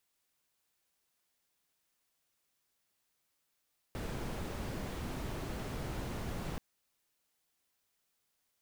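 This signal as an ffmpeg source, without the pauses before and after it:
ffmpeg -f lavfi -i "anoisesrc=color=brown:amplitude=0.0525:duration=2.63:sample_rate=44100:seed=1" out.wav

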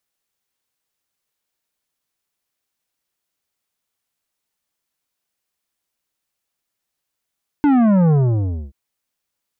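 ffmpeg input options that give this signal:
ffmpeg -f lavfi -i "aevalsrc='0.251*clip((1.08-t)/0.61,0,1)*tanh(3.55*sin(2*PI*300*1.08/log(65/300)*(exp(log(65/300)*t/1.08)-1)))/tanh(3.55)':duration=1.08:sample_rate=44100" out.wav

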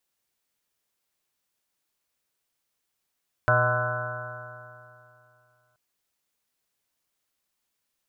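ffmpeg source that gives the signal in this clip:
ffmpeg -f lavfi -i "aevalsrc='0.0708*pow(10,-3*t/2.65)*sin(2*PI*120.14*t)+0.00708*pow(10,-3*t/2.65)*sin(2*PI*241.1*t)+0.00891*pow(10,-3*t/2.65)*sin(2*PI*363.71*t)+0.0158*pow(10,-3*t/2.65)*sin(2*PI*488.75*t)+0.0794*pow(10,-3*t/2.65)*sin(2*PI*617.01*t)+0.0316*pow(10,-3*t/2.65)*sin(2*PI*749.22*t)+0.00891*pow(10,-3*t/2.65)*sin(2*PI*886.07*t)+0.0473*pow(10,-3*t/2.65)*sin(2*PI*1028.23*t)+0.02*pow(10,-3*t/2.65)*sin(2*PI*1176.31*t)+0.0562*pow(10,-3*t/2.65)*sin(2*PI*1330.86*t)+0.0841*pow(10,-3*t/2.65)*sin(2*PI*1492.42*t)+0.01*pow(10,-3*t/2.65)*sin(2*PI*1661.44*t)':duration=2.28:sample_rate=44100" out.wav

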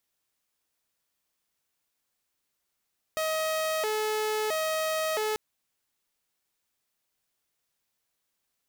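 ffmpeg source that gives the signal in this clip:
ffmpeg -f lavfi -i "aevalsrc='0.0631*(2*mod((531*t+101/0.75*(0.5-abs(mod(0.75*t,1)-0.5))),1)-1)':duration=2.19:sample_rate=44100" out.wav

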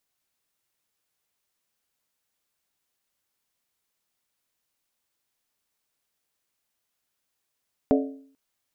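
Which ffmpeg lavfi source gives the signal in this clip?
ffmpeg -f lavfi -i "aevalsrc='0.158*pow(10,-3*t/0.57)*sin(2*PI*272*t)+0.112*pow(10,-3*t/0.451)*sin(2*PI*433.6*t)+0.0794*pow(10,-3*t/0.39)*sin(2*PI*581*t)+0.0562*pow(10,-3*t/0.376)*sin(2*PI*624.5*t)+0.0398*pow(10,-3*t/0.35)*sin(2*PI*721.6*t)':duration=0.44:sample_rate=44100" out.wav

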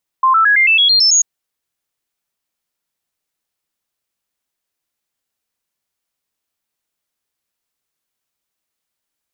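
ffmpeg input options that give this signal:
ffmpeg -f lavfi -i "aevalsrc='0.398*clip(min(mod(t,0.11),0.11-mod(t,0.11))/0.005,0,1)*sin(2*PI*1050*pow(2,floor(t/0.11)/3)*mod(t,0.11))':duration=0.99:sample_rate=44100" out.wav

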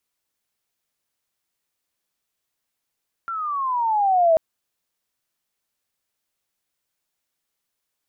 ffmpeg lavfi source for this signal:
ffmpeg -f lavfi -i "aevalsrc='pow(10,(-12+13.5*(t/1.09-1))/20)*sin(2*PI*1380*1.09/(-13.5*log(2)/12)*(exp(-13.5*log(2)/12*t/1.09)-1))':duration=1.09:sample_rate=44100" out.wav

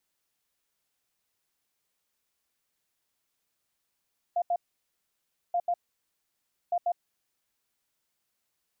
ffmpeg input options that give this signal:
ffmpeg -f lavfi -i "aevalsrc='0.0668*sin(2*PI*699*t)*clip(min(mod(mod(t,1.18),0.14),0.06-mod(mod(t,1.18),0.14))/0.005,0,1)*lt(mod(t,1.18),0.28)':duration=3.54:sample_rate=44100" out.wav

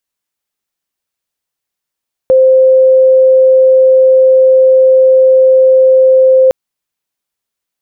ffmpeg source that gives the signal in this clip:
ffmpeg -f lavfi -i "sine=frequency=522:duration=4.21:sample_rate=44100,volume=15.06dB" out.wav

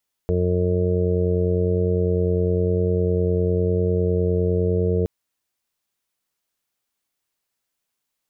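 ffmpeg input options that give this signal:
ffmpeg -f lavfi -i "aevalsrc='0.0891*sin(2*PI*89.9*t)+0.0562*sin(2*PI*179.8*t)+0.0106*sin(2*PI*269.7*t)+0.0447*sin(2*PI*359.6*t)+0.0794*sin(2*PI*449.5*t)+0.0178*sin(2*PI*539.4*t)+0.0178*sin(2*PI*629.3*t)':duration=4.77:sample_rate=44100" out.wav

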